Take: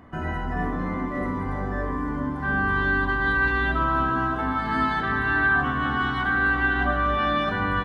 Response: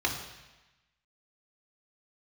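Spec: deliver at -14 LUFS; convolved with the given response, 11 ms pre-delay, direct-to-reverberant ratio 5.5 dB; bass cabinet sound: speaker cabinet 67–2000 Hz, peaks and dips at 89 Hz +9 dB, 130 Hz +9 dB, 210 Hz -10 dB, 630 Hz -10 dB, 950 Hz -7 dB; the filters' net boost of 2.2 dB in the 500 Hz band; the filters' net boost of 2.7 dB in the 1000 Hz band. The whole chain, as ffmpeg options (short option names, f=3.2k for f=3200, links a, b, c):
-filter_complex "[0:a]equalizer=f=500:t=o:g=6.5,equalizer=f=1k:t=o:g=6,asplit=2[a][b];[1:a]atrim=start_sample=2205,adelay=11[c];[b][c]afir=irnorm=-1:irlink=0,volume=-15dB[d];[a][d]amix=inputs=2:normalize=0,highpass=f=67:w=0.5412,highpass=f=67:w=1.3066,equalizer=f=89:t=q:w=4:g=9,equalizer=f=130:t=q:w=4:g=9,equalizer=f=210:t=q:w=4:g=-10,equalizer=f=630:t=q:w=4:g=-10,equalizer=f=950:t=q:w=4:g=-7,lowpass=f=2k:w=0.5412,lowpass=f=2k:w=1.3066,volume=6.5dB"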